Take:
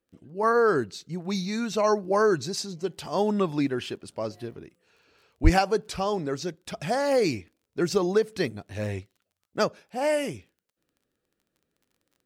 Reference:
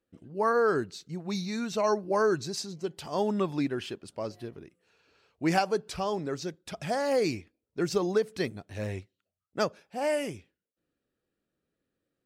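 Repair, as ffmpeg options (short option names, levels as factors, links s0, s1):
-filter_complex "[0:a]adeclick=t=4,asplit=3[s0][s1][s2];[s0]afade=t=out:st=5.43:d=0.02[s3];[s1]highpass=f=140:w=0.5412,highpass=f=140:w=1.3066,afade=t=in:st=5.43:d=0.02,afade=t=out:st=5.55:d=0.02[s4];[s2]afade=t=in:st=5.55:d=0.02[s5];[s3][s4][s5]amix=inputs=3:normalize=0,asetnsamples=n=441:p=0,asendcmd='0.43 volume volume -3.5dB',volume=1"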